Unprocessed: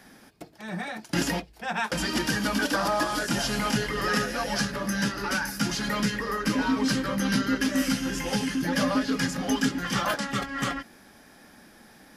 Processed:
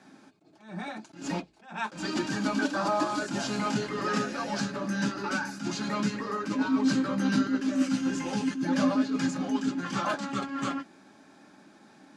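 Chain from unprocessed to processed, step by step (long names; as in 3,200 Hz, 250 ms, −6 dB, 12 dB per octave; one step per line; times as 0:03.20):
loudspeaker in its box 170–7,500 Hz, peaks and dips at 250 Hz +9 dB, 500 Hz −4 dB, 1,900 Hz −8 dB, 3,100 Hz −5 dB, 5,300 Hz −8 dB
notch comb filter 240 Hz
level that may rise only so fast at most 130 dB per second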